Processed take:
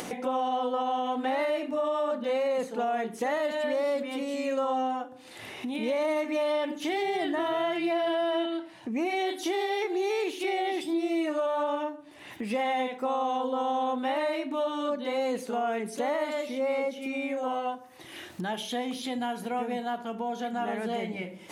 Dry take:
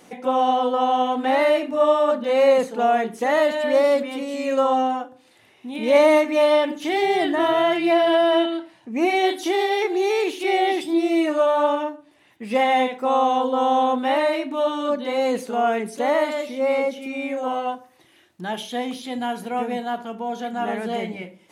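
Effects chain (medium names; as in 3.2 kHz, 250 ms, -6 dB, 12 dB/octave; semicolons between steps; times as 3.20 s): upward compressor, threshold -28 dBFS; peak limiter -13 dBFS, peak gain reduction 8 dB; compression 2:1, threshold -32 dBFS, peak gain reduction 8.5 dB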